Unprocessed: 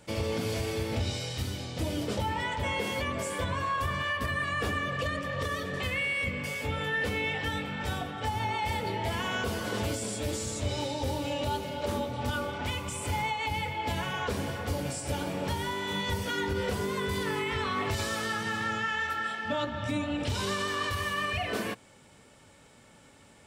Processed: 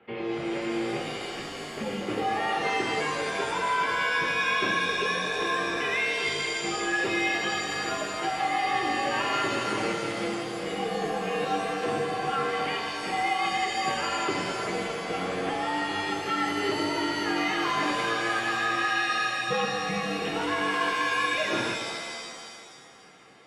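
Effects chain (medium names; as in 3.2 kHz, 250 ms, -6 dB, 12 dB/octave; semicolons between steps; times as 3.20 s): mistuned SSB -98 Hz 290–3000 Hz; level rider gain up to 3.5 dB; pitch-shifted reverb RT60 1.8 s, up +7 st, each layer -2 dB, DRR 5 dB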